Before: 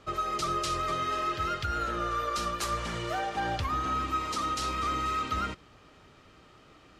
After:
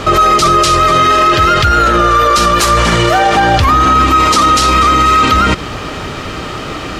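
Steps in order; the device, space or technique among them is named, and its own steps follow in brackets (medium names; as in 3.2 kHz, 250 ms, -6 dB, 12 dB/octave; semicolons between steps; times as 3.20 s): loud club master (compression 1.5:1, threshold -36 dBFS, peak gain reduction 4 dB; hard clipper -25 dBFS, distortion -43 dB; loudness maximiser +35 dB); trim -1 dB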